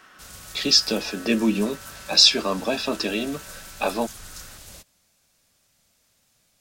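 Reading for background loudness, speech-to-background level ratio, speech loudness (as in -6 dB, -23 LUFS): -40.5 LUFS, 19.5 dB, -21.0 LUFS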